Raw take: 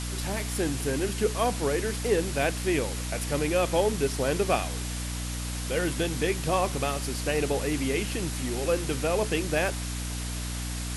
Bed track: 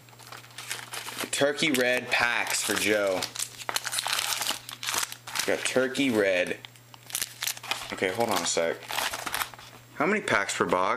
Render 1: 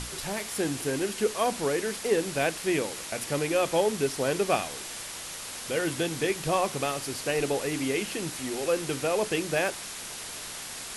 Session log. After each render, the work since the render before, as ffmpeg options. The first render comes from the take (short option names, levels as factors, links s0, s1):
-af "bandreject=f=60:t=h:w=6,bandreject=f=120:t=h:w=6,bandreject=f=180:t=h:w=6,bandreject=f=240:t=h:w=6,bandreject=f=300:t=h:w=6"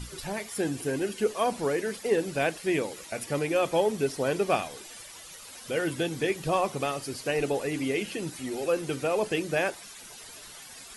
-af "afftdn=nr=12:nf=-39"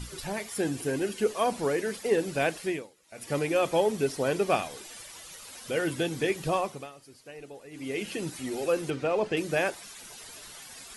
-filter_complex "[0:a]asettb=1/sr,asplit=3[s0][s1][s2];[s0]atrim=end=8.904[s3];[s1]atrim=start=8.9:end=9.37,asetpts=PTS-STARTPTS,afade=t=in:d=0.004:c=qsin,afade=t=out:st=0.466:d=0.004:c=qsin,adynamicsmooth=sensitivity=1:basefreq=4600[s4];[s2]atrim=start=9.366[s5];[s3][s4]acrossfade=d=0.004:c1=hsin:c2=qsin[s6];[s6][s5]acrossfade=d=0.004:c1=qsin:c2=hsin,asplit=5[s7][s8][s9][s10][s11];[s7]atrim=end=2.96,asetpts=PTS-STARTPTS,afade=t=out:st=2.64:d=0.32:c=qua:silence=0.0749894[s12];[s8]atrim=start=2.96:end=3,asetpts=PTS-STARTPTS,volume=0.075[s13];[s9]atrim=start=3:end=6.9,asetpts=PTS-STARTPTS,afade=t=in:d=0.32:c=qua:silence=0.0749894,afade=t=out:st=3.47:d=0.43:silence=0.141254[s14];[s10]atrim=start=6.9:end=7.7,asetpts=PTS-STARTPTS,volume=0.141[s15];[s11]atrim=start=7.7,asetpts=PTS-STARTPTS,afade=t=in:d=0.43:silence=0.141254[s16];[s12][s13][s14][s15][s16]concat=n=5:v=0:a=1"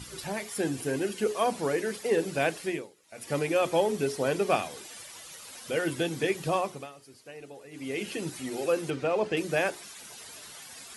-af "highpass=74,bandreject=f=60:t=h:w=6,bandreject=f=120:t=h:w=6,bandreject=f=180:t=h:w=6,bandreject=f=240:t=h:w=6,bandreject=f=300:t=h:w=6,bandreject=f=360:t=h:w=6,bandreject=f=420:t=h:w=6"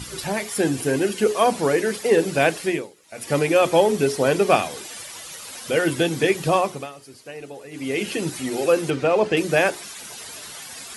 -af "volume=2.66"